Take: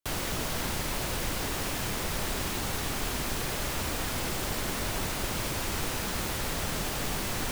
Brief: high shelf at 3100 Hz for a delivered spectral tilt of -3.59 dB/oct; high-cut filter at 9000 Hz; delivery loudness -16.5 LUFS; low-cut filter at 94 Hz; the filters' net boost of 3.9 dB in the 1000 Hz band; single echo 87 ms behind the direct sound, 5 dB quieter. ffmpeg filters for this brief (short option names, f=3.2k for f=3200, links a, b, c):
-af "highpass=94,lowpass=9k,equalizer=f=1k:t=o:g=4.5,highshelf=f=3.1k:g=3,aecho=1:1:87:0.562,volume=13dB"